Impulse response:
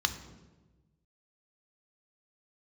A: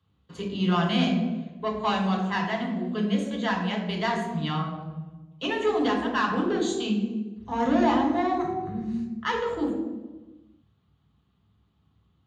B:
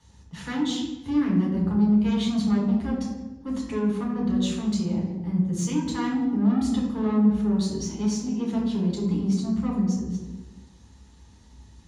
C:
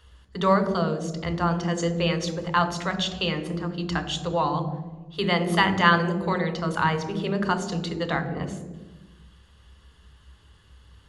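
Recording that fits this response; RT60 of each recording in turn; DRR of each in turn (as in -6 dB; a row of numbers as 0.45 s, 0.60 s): C; 1.2 s, 1.2 s, 1.2 s; 0.0 dB, -4.0 dB, 8.0 dB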